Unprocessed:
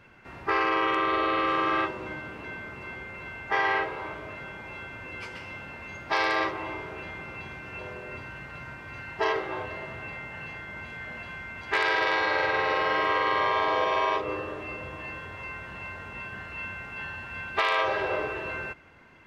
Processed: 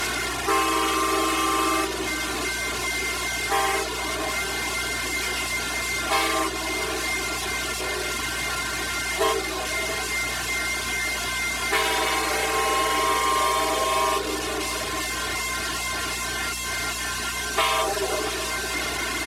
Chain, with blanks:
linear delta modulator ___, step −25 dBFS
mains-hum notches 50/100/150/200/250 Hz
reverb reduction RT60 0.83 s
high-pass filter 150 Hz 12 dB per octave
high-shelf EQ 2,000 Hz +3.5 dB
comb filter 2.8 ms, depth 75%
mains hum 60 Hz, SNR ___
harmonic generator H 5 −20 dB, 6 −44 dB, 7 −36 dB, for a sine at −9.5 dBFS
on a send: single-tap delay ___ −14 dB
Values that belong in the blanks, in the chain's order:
64 kbit/s, 15 dB, 679 ms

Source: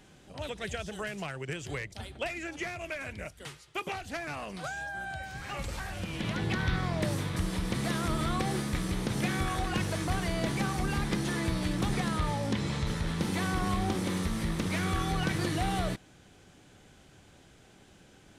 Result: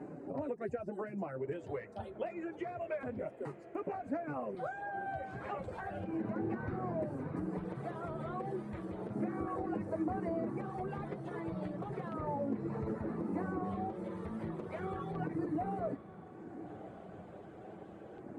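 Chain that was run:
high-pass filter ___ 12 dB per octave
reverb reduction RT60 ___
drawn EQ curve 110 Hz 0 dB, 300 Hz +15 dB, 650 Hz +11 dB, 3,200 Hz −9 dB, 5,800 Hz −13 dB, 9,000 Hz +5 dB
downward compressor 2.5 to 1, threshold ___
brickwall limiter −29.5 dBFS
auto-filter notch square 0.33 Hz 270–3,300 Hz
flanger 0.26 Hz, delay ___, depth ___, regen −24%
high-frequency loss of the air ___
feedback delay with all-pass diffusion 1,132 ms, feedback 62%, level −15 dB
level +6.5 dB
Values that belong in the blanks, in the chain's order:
78 Hz, 1.2 s, −43 dBFS, 6.7 ms, 3.4 ms, 160 metres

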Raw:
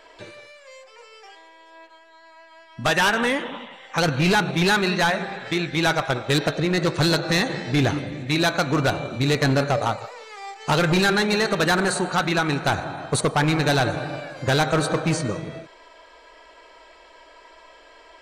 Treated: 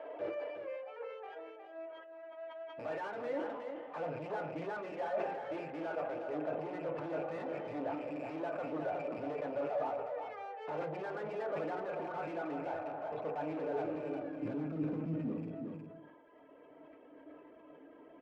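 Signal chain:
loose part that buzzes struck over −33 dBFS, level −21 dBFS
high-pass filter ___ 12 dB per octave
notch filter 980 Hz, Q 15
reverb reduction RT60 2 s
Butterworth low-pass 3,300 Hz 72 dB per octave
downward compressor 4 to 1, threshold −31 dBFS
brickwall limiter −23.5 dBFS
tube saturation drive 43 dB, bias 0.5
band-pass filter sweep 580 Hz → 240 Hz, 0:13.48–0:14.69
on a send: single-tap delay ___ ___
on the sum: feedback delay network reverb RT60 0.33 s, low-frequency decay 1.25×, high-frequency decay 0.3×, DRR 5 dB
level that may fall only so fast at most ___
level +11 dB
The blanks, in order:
110 Hz, 362 ms, −7 dB, 41 dB per second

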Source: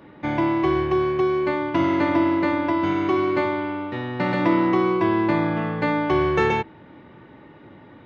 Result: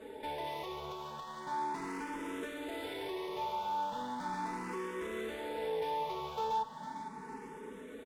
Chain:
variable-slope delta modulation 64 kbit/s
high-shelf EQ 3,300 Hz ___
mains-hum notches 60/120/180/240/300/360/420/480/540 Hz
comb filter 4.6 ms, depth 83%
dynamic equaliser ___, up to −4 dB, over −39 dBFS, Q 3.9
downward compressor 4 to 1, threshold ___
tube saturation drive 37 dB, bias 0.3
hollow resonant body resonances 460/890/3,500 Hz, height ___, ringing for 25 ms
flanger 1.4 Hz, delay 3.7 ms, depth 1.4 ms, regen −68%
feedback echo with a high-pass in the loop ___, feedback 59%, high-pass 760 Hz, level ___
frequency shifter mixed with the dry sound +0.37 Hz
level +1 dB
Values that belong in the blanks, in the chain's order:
+3 dB, 170 Hz, −27 dBFS, 12 dB, 455 ms, −9 dB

